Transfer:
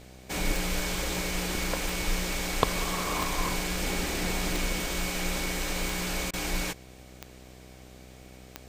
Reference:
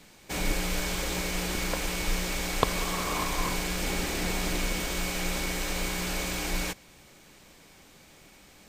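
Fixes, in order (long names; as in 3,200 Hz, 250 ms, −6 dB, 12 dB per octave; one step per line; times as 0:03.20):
click removal
hum removal 63.3 Hz, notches 12
repair the gap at 0:06.31, 23 ms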